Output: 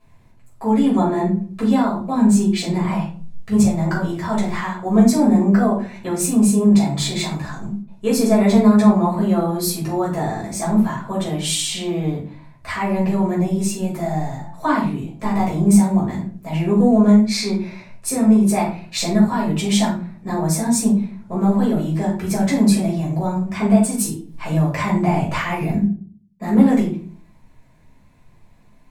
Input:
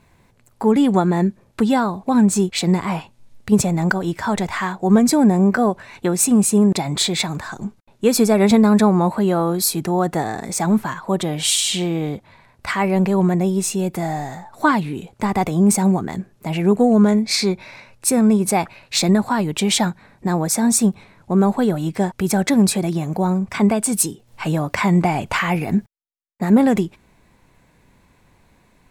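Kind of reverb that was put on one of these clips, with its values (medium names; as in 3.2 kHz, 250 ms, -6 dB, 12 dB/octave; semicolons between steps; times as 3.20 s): simulated room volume 330 m³, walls furnished, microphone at 5.9 m; trim -12 dB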